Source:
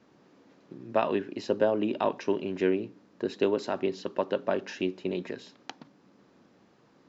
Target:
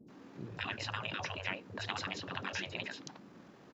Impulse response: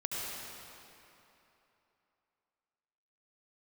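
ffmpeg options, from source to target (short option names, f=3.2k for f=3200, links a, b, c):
-filter_complex "[0:a]afftfilt=real='re*lt(hypot(re,im),0.0447)':imag='im*lt(hypot(re,im),0.0447)':win_size=1024:overlap=0.75,acrossover=split=480|4900[a][b][c];[c]adelay=140[d];[b]adelay=170[e];[a][e][d]amix=inputs=3:normalize=0,atempo=1.9,volume=6.5dB"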